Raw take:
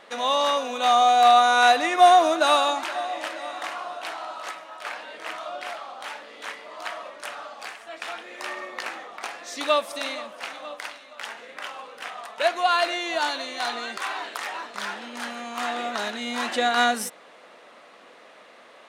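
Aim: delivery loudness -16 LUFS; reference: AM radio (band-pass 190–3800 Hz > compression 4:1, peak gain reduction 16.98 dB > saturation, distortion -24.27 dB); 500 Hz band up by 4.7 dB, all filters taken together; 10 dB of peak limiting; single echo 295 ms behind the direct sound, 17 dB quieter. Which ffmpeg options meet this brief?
-af "equalizer=f=500:t=o:g=7,alimiter=limit=0.266:level=0:latency=1,highpass=190,lowpass=3800,aecho=1:1:295:0.141,acompressor=threshold=0.0158:ratio=4,asoftclip=threshold=0.0501,volume=13.3"

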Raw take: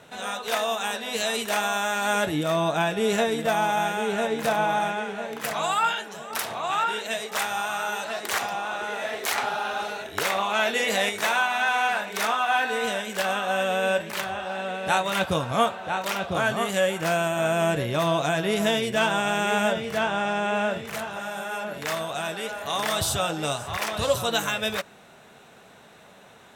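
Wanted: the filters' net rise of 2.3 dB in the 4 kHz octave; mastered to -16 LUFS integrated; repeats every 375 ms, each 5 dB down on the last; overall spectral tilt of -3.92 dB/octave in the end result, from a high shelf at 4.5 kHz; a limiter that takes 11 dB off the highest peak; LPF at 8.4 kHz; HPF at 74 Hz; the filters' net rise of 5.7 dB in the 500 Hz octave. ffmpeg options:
-af "highpass=74,lowpass=8400,equalizer=f=500:t=o:g=7.5,equalizer=f=4000:t=o:g=6,highshelf=f=4500:g=-7,alimiter=limit=0.168:level=0:latency=1,aecho=1:1:375|750|1125|1500|1875|2250|2625:0.562|0.315|0.176|0.0988|0.0553|0.031|0.0173,volume=2.37"

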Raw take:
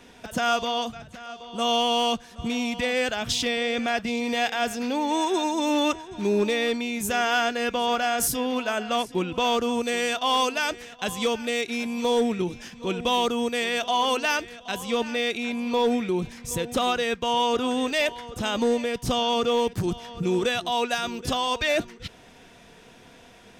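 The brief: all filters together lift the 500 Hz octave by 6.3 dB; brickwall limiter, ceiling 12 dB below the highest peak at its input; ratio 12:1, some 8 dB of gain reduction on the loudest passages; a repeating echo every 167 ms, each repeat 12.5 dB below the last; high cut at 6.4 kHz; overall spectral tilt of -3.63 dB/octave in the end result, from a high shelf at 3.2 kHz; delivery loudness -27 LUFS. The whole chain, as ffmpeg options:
-af "lowpass=6400,equalizer=f=500:t=o:g=7,highshelf=f=3200:g=5.5,acompressor=threshold=0.0891:ratio=12,alimiter=limit=0.0631:level=0:latency=1,aecho=1:1:167|334|501:0.237|0.0569|0.0137,volume=1.78"

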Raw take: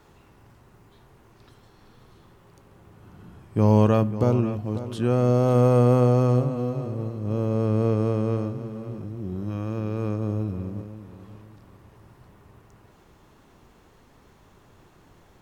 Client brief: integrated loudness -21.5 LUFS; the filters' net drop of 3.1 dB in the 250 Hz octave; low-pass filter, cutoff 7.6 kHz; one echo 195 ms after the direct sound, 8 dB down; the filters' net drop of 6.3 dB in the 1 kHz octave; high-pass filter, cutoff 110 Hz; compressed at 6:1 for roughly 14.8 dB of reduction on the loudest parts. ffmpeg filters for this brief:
-af "highpass=110,lowpass=7600,equalizer=f=250:t=o:g=-3,equalizer=f=1000:t=o:g=-8.5,acompressor=threshold=0.0251:ratio=6,aecho=1:1:195:0.398,volume=5.62"

